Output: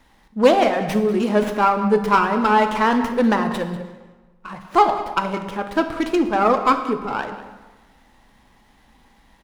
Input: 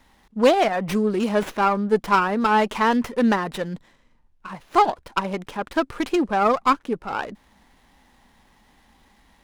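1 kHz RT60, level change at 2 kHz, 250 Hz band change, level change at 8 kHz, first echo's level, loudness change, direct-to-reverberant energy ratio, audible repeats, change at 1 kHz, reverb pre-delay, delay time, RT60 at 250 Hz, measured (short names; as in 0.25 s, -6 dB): 1.3 s, +2.0 dB, +2.5 dB, n/a, -15.5 dB, +2.5 dB, 6.0 dB, 1, +2.5 dB, 5 ms, 0.193 s, 1.3 s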